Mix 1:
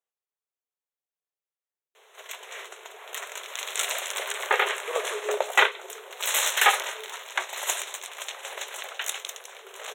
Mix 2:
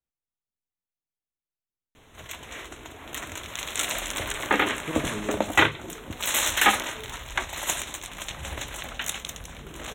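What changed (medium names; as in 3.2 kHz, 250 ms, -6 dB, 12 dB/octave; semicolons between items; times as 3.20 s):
speech -5.0 dB; master: remove brick-wall FIR high-pass 370 Hz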